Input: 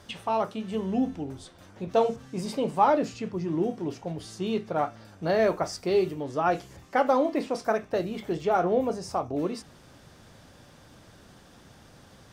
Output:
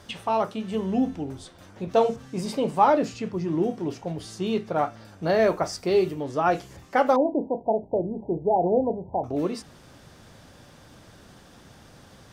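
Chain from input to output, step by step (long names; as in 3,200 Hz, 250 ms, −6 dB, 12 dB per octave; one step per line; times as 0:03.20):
0:07.16–0:09.24: linear-phase brick-wall low-pass 1,000 Hz
level +2.5 dB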